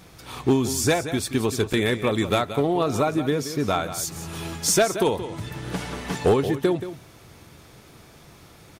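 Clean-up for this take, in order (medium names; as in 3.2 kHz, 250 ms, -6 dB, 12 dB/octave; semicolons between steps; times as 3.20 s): clip repair -12 dBFS; interpolate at 1.73 s, 5.1 ms; inverse comb 177 ms -12 dB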